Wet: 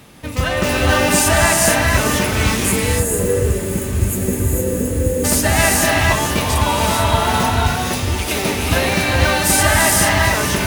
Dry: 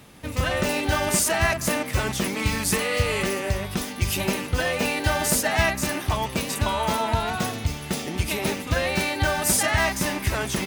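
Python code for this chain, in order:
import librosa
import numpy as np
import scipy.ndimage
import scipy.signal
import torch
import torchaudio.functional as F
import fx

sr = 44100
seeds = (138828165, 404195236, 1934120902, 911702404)

y = fx.spec_erase(x, sr, start_s=2.56, length_s=2.68, low_hz=570.0, high_hz=6400.0)
y = fx.peak_eq(y, sr, hz=130.0, db=-13.0, octaves=1.3, at=(7.75, 8.36))
y = fx.echo_diffused(y, sr, ms=1455, feedback_pct=55, wet_db=-16.0)
y = fx.rev_gated(y, sr, seeds[0], gate_ms=490, shape='rising', drr_db=-1.5)
y = y * librosa.db_to_amplitude(5.0)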